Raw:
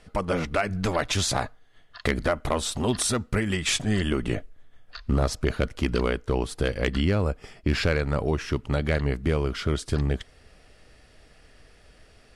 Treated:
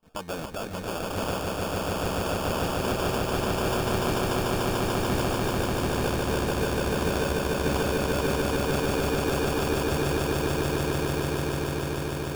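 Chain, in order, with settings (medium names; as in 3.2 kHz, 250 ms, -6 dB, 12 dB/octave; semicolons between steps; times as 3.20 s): gate with hold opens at -46 dBFS; tilt EQ +2 dB/octave; peak limiter -17 dBFS, peak gain reduction 8.5 dB; sample-rate reducer 2 kHz, jitter 0%; on a send: echo with a slow build-up 147 ms, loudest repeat 8, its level -3 dB; on the sum: trim -4.5 dB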